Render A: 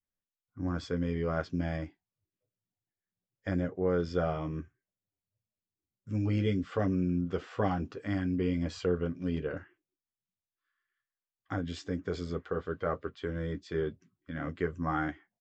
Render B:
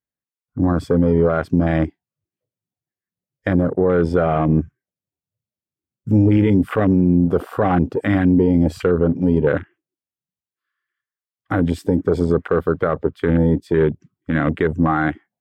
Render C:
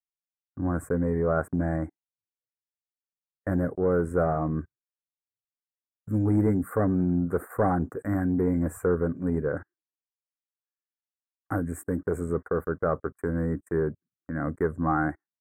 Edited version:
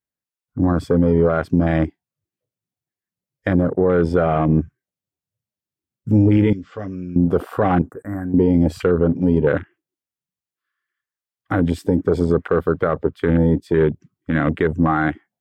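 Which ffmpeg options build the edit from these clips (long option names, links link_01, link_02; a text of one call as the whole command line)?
ffmpeg -i take0.wav -i take1.wav -i take2.wav -filter_complex "[1:a]asplit=3[link_01][link_02][link_03];[link_01]atrim=end=6.532[link_04];[0:a]atrim=start=6.528:end=7.162[link_05];[link_02]atrim=start=7.158:end=7.822[link_06];[2:a]atrim=start=7.818:end=8.342[link_07];[link_03]atrim=start=8.338[link_08];[link_04][link_05]acrossfade=duration=0.004:curve1=hsin:curve2=hsin[link_09];[link_09][link_06]acrossfade=duration=0.004:curve1=hsin:curve2=hsin[link_10];[link_10][link_07]acrossfade=duration=0.004:curve1=hsin:curve2=hsin[link_11];[link_11][link_08]acrossfade=duration=0.004:curve1=hsin:curve2=hsin" out.wav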